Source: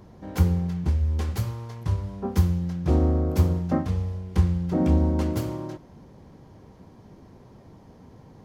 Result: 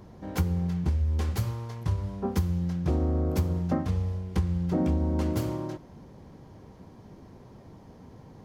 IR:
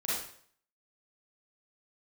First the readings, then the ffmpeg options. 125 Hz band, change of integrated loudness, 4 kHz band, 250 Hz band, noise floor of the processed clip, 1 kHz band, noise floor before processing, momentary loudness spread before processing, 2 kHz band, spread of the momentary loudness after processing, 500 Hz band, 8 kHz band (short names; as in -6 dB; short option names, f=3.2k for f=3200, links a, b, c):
-3.5 dB, -3.5 dB, -1.5 dB, -3.0 dB, -51 dBFS, -2.5 dB, -51 dBFS, 10 LU, -1.5 dB, 6 LU, -3.0 dB, -1.5 dB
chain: -af "acompressor=threshold=-22dB:ratio=6"